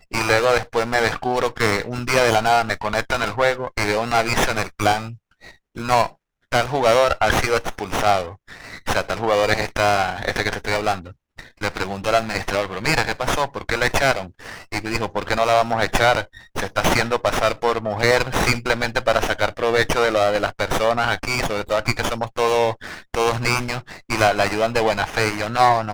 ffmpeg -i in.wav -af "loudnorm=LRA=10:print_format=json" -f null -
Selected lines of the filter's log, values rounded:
"input_i" : "-20.3",
"input_tp" : "-2.7",
"input_lra" : "2.5",
"input_thresh" : "-30.6",